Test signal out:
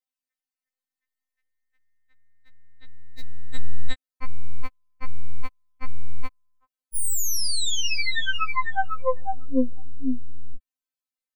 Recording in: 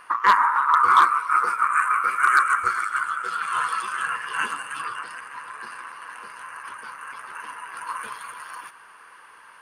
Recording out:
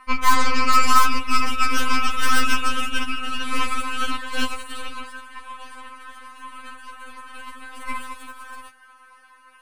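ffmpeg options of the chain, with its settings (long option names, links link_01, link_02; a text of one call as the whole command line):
ffmpeg -i in.wav -af "aeval=exprs='0.422*(cos(1*acos(clip(val(0)/0.422,-1,1)))-cos(1*PI/2))+0.119*(cos(8*acos(clip(val(0)/0.422,-1,1)))-cos(8*PI/2))':channel_layout=same,afftfilt=real='re*3.46*eq(mod(b,12),0)':imag='im*3.46*eq(mod(b,12),0)':win_size=2048:overlap=0.75,volume=-1dB" out.wav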